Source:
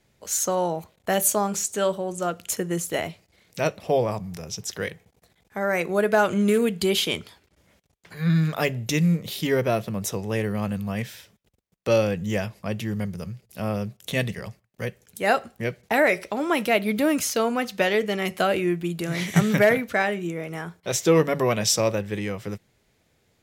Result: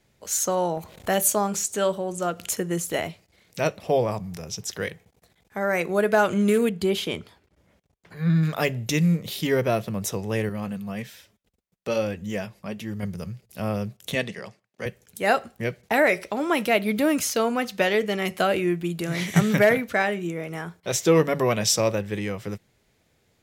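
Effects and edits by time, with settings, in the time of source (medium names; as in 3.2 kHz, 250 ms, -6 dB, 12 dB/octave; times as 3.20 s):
0.77–3.08 s: upward compressor, threshold -28 dBFS
6.69–8.43 s: treble shelf 2 kHz -8.5 dB
10.49–13.03 s: flange 1.2 Hz, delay 2.9 ms, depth 2.9 ms, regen -42%
14.15–14.86 s: band-pass 220–7700 Hz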